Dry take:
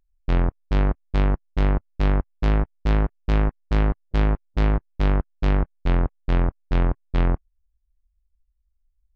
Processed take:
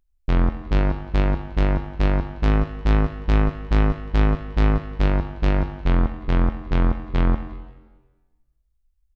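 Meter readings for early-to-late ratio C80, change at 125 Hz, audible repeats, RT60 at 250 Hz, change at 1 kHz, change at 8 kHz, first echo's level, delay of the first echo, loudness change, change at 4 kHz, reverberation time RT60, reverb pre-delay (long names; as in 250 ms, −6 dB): 11.0 dB, +1.5 dB, 3, 1.3 s, +2.0 dB, can't be measured, −17.0 dB, 175 ms, +1.5 dB, +2.0 dB, 1.3 s, 5 ms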